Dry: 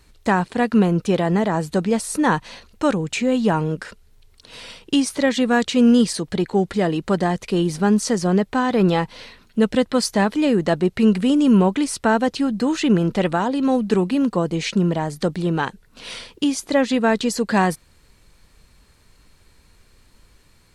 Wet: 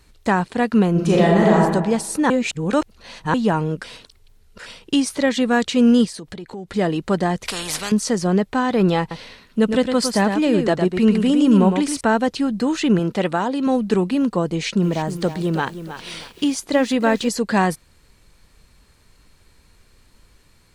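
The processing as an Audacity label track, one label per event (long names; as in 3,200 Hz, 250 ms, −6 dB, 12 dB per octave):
0.910000	1.590000	thrown reverb, RT60 1.1 s, DRR −4 dB
2.300000	3.340000	reverse
3.840000	4.660000	reverse
6.050000	6.720000	downward compressor 5 to 1, threshold −31 dBFS
7.450000	7.920000	every bin compressed towards the loudest bin 4 to 1
9.000000	12.010000	single-tap delay 108 ms −6.5 dB
12.990000	13.670000	high-pass filter 150 Hz 6 dB per octave
14.500000	17.290000	feedback echo at a low word length 316 ms, feedback 35%, word length 7 bits, level −11 dB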